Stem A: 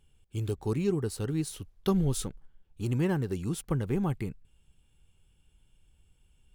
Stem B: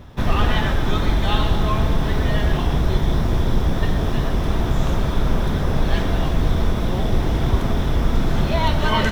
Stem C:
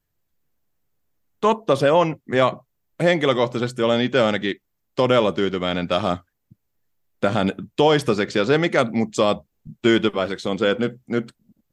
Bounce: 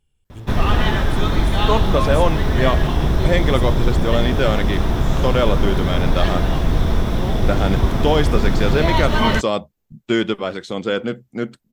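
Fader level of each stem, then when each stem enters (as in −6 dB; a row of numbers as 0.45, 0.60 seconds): −4.0, +1.5, −1.5 decibels; 0.00, 0.30, 0.25 seconds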